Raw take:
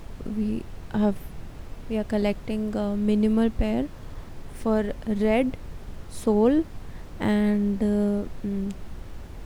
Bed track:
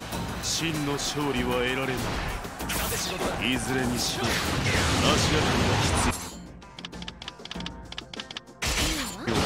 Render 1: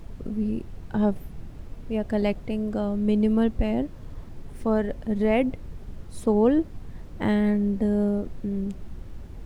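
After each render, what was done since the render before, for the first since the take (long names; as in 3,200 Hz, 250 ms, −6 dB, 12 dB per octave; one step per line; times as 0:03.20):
broadband denoise 7 dB, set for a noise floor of −41 dBFS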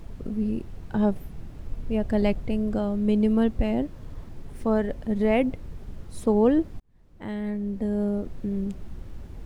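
0:01.65–0:02.79: low-shelf EQ 120 Hz +7 dB
0:06.80–0:08.43: fade in linear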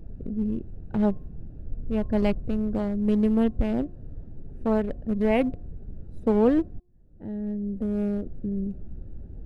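adaptive Wiener filter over 41 samples
hum removal 355.6 Hz, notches 3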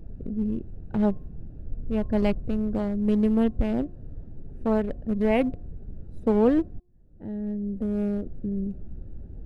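no processing that can be heard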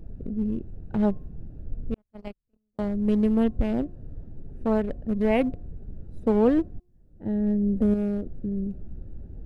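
0:01.94–0:02.79: noise gate −19 dBFS, range −52 dB
0:07.26–0:07.94: clip gain +6.5 dB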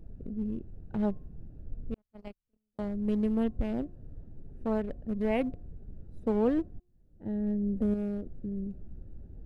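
level −6.5 dB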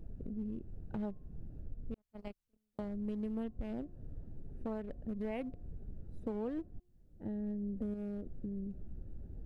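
downward compressor 3 to 1, threshold −39 dBFS, peak gain reduction 13 dB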